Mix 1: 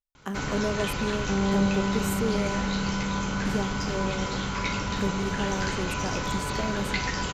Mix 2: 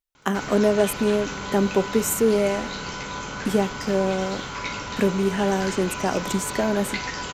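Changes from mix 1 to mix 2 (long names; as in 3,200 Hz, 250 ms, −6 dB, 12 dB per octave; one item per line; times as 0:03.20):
speech +11.5 dB
second sound −11.0 dB
master: add low-shelf EQ 160 Hz −9.5 dB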